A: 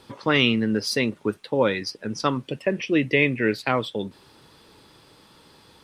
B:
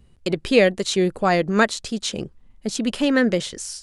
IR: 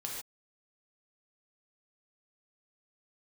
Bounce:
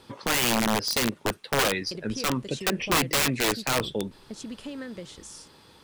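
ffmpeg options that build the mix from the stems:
-filter_complex "[0:a]volume=-1dB[link_01];[1:a]equalizer=frequency=68:width_type=o:width=1.8:gain=9.5,acompressor=threshold=-22dB:ratio=10,adelay=1650,volume=-12dB[link_02];[link_01][link_02]amix=inputs=2:normalize=0,aeval=exprs='(mod(7.08*val(0)+1,2)-1)/7.08':channel_layout=same"

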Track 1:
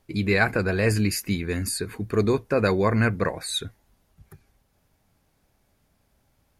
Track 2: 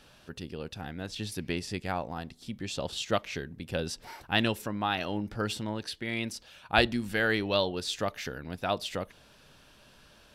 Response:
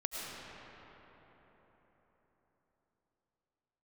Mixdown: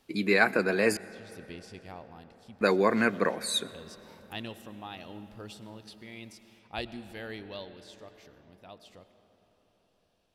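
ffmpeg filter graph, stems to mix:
-filter_complex "[0:a]highpass=frequency=200:width=0.5412,highpass=frequency=200:width=1.3066,volume=-2dB,asplit=3[link_01][link_02][link_03];[link_01]atrim=end=0.97,asetpts=PTS-STARTPTS,afade=type=out:start_time=0.966:duration=0.004:curve=hsin[link_04];[link_02]atrim=start=0.97:end=2.61,asetpts=PTS-STARTPTS,volume=0[link_05];[link_03]atrim=start=2.61,asetpts=PTS-STARTPTS,afade=type=in:duration=0.004:curve=hsin[link_06];[link_04][link_05][link_06]concat=n=3:v=0:a=1,asplit=3[link_07][link_08][link_09];[link_08]volume=-20.5dB[link_10];[1:a]equalizer=frequency=1500:width=2.9:gain=-7,volume=-13.5dB,afade=type=out:start_time=7.31:duration=0.56:silence=0.446684,asplit=2[link_11][link_12];[link_12]volume=-12dB[link_13];[link_09]apad=whole_len=456236[link_14];[link_11][link_14]sidechaincompress=threshold=-36dB:ratio=8:attack=16:release=466[link_15];[2:a]atrim=start_sample=2205[link_16];[link_10][link_13]amix=inputs=2:normalize=0[link_17];[link_17][link_16]afir=irnorm=-1:irlink=0[link_18];[link_07][link_15][link_18]amix=inputs=3:normalize=0"

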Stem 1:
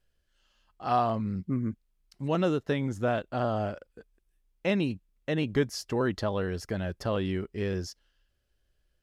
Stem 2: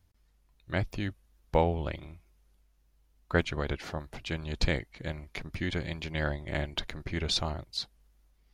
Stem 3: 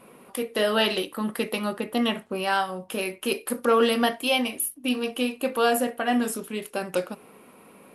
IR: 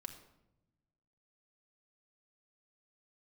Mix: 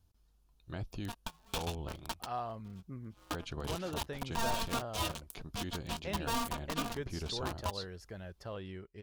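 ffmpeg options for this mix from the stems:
-filter_complex "[0:a]equalizer=frequency=250:width_type=o:width=0.81:gain=-6,adelay=1400,volume=-12.5dB[link_01];[1:a]bandreject=frequency=570:width=12,alimiter=limit=-21.5dB:level=0:latency=1:release=29,volume=-2dB,asplit=2[link_02][link_03];[2:a]bass=frequency=250:gain=-13,treble=frequency=4000:gain=-8,acrusher=bits=3:mix=0:aa=0.5,aeval=exprs='val(0)*sgn(sin(2*PI*460*n/s))':channel_layout=same,adelay=700,volume=-3dB[link_04];[link_03]apad=whole_len=381417[link_05];[link_04][link_05]sidechaingate=range=-35dB:threshold=-56dB:ratio=16:detection=peak[link_06];[link_02][link_06]amix=inputs=2:normalize=0,equalizer=frequency=2000:width=3.1:gain=-12,acompressor=threshold=-45dB:ratio=1.5,volume=0dB[link_07];[link_01][link_07]amix=inputs=2:normalize=0"

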